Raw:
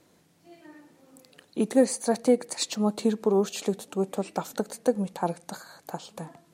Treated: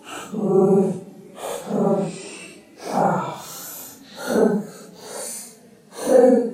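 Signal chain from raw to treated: Paulstretch 6.3×, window 0.05 s, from 3.90 s; dynamic bell 4.4 kHz, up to -3 dB, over -47 dBFS, Q 0.75; trim +7.5 dB

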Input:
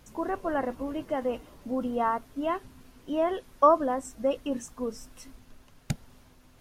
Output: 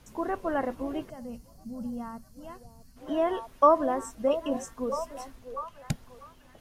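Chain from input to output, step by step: wow and flutter 25 cents; repeats whose band climbs or falls 646 ms, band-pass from 500 Hz, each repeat 0.7 oct, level -9 dB; time-frequency box 1.10–2.97 s, 240–4100 Hz -16 dB

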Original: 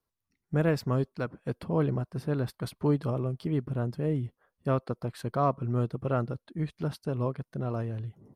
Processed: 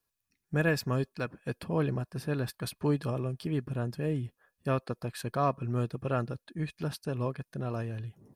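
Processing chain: treble shelf 2.9 kHz +9.5 dB; band-stop 2 kHz, Q 30; small resonant body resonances 1.7/2.5 kHz, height 12 dB; trim -2.5 dB

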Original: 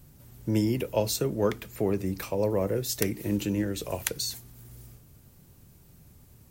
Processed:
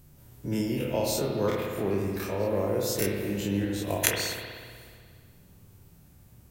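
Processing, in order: every event in the spectrogram widened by 60 ms; 3.60–4.10 s: transient shaper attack +9 dB, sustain -7 dB; spring tank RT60 1.9 s, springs 60 ms, chirp 70 ms, DRR 0.5 dB; trim -6 dB

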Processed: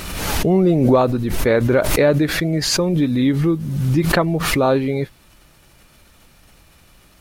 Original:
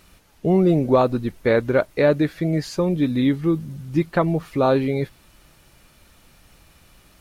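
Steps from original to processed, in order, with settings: swell ahead of each attack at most 34 dB/s; trim +1.5 dB

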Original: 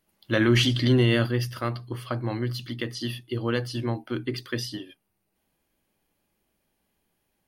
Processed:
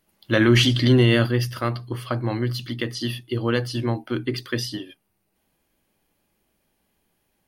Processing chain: trim +4 dB

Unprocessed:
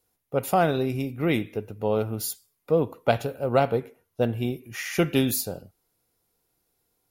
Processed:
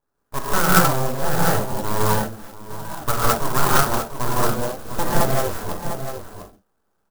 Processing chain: local Wiener filter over 9 samples; low-pass 8.9 kHz; full-wave rectifier; resonant high shelf 1.9 kHz -6 dB, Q 3; echo from a far wall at 120 m, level -8 dB; 2.06–2.88 s: compression 2.5:1, threshold -39 dBFS, peak gain reduction 15.5 dB; gated-style reverb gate 240 ms rising, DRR -8 dB; sampling jitter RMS 0.076 ms

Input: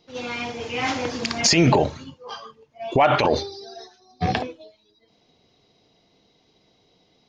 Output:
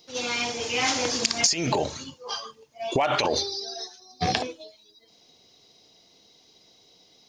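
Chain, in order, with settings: tone controls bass -5 dB, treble +15 dB; compression 16:1, threshold -19 dBFS, peak gain reduction 16.5 dB

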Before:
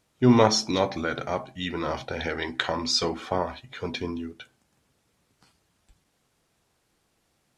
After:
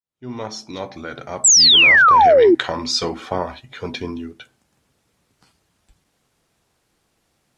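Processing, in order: fade-in on the opening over 2.28 s; painted sound fall, 1.44–2.55 s, 320–8100 Hz -14 dBFS; trim +3.5 dB

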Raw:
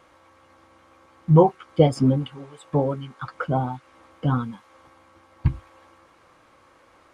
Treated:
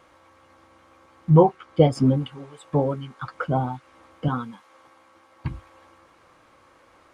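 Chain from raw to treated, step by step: 1.30–1.95 s: treble shelf 7.7 kHz -8 dB; 4.28–5.51 s: high-pass 300 Hz 6 dB/octave

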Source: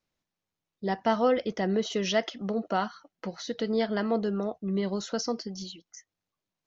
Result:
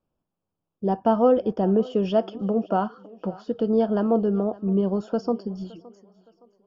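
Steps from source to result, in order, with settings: boxcar filter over 22 samples; thinning echo 566 ms, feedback 41%, high-pass 260 Hz, level -20.5 dB; trim +7 dB

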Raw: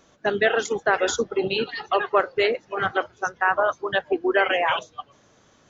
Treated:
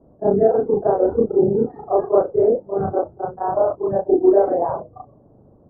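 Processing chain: short-time spectra conjugated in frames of 81 ms; inverse Chebyshev low-pass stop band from 2.6 kHz, stop band 60 dB; bass shelf 400 Hz +7.5 dB; trim +7.5 dB

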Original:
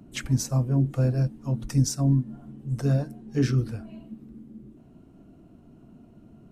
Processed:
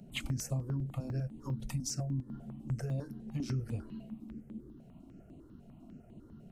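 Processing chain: peak limiter -19 dBFS, peak gain reduction 8 dB; compression 10:1, threshold -30 dBFS, peak gain reduction 8.5 dB; stepped phaser 10 Hz 300–5400 Hz

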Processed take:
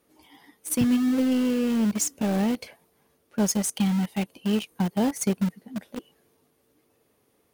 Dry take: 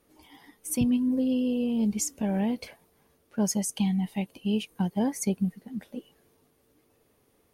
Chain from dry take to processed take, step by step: high-pass 110 Hz 6 dB/octave; in parallel at -6 dB: bit crusher 5-bit

